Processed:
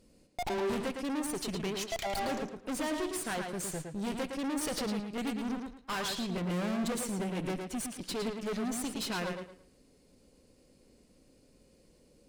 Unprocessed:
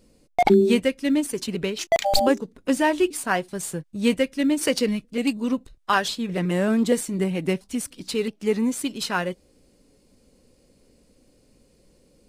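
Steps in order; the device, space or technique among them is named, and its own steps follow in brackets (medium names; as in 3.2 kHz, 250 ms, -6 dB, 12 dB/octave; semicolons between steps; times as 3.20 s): rockabilly slapback (valve stage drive 31 dB, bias 0.65; tape echo 111 ms, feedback 29%, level -3.5 dB, low-pass 5.6 kHz); trim -1.5 dB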